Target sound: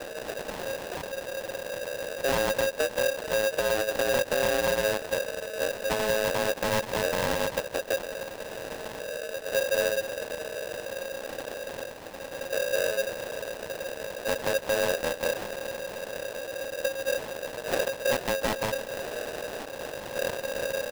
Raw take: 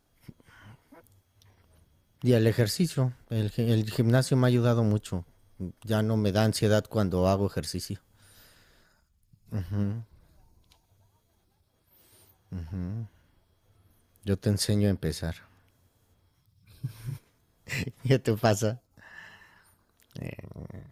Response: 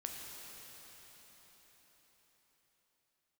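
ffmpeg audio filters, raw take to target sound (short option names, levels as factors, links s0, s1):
-af "aeval=exprs='val(0)+0.5*0.0266*sgn(val(0))':c=same,lowpass=f=3000:t=q:w=0.5098,lowpass=f=3000:t=q:w=0.6013,lowpass=f=3000:t=q:w=0.9,lowpass=f=3000:t=q:w=2.563,afreqshift=-3500,aresample=11025,acrusher=samples=13:mix=1:aa=0.000001,aresample=44100,asoftclip=type=hard:threshold=0.188,lowshelf=f=100:g=4,alimiter=limit=0.112:level=0:latency=1:release=121,aecho=1:1:474:0.0794,aeval=exprs='val(0)*sgn(sin(2*PI*540*n/s))':c=same"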